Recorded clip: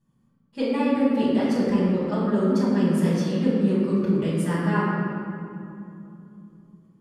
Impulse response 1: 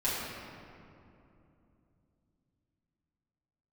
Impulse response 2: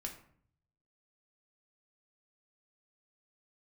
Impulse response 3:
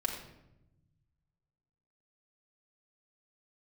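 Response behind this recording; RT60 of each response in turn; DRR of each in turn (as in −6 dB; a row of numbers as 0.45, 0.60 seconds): 1; 2.8, 0.55, 0.90 seconds; −10.5, 1.0, −0.5 decibels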